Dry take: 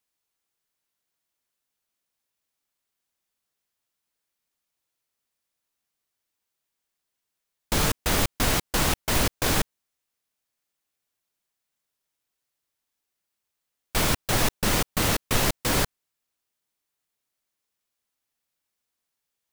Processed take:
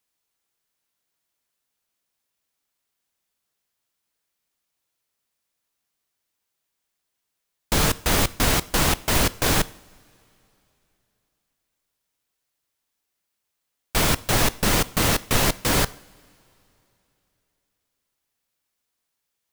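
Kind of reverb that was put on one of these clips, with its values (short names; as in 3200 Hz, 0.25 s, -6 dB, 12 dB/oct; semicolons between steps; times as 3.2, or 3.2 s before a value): two-slope reverb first 0.56 s, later 3.2 s, from -18 dB, DRR 17 dB; gain +3 dB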